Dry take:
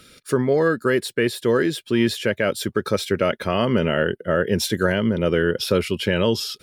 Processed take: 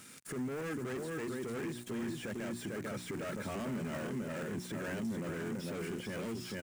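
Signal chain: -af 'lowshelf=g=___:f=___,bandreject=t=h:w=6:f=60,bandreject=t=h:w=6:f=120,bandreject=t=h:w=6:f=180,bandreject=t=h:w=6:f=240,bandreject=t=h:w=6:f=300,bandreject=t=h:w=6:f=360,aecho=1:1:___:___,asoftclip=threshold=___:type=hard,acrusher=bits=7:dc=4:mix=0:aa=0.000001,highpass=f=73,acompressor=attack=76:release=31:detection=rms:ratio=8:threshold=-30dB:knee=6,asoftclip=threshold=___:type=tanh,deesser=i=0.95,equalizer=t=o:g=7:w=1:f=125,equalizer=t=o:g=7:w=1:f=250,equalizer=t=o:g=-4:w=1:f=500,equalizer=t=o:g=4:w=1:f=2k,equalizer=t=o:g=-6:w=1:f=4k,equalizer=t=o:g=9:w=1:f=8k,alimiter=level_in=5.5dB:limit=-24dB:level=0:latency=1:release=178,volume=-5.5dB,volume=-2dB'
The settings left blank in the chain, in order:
-9, 140, 447, 0.447, -22.5dB, -27.5dB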